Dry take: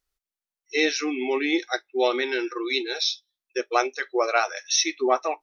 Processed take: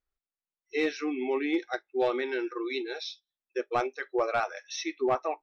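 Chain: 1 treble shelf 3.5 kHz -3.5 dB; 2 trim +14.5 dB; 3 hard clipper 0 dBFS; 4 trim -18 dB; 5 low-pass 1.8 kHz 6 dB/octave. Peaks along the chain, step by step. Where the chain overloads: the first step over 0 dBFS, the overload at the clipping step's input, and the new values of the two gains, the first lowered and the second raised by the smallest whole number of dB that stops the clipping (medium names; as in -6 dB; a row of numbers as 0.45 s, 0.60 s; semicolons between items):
-6.5 dBFS, +8.0 dBFS, 0.0 dBFS, -18.0 dBFS, -18.0 dBFS; step 2, 8.0 dB; step 2 +6.5 dB, step 4 -10 dB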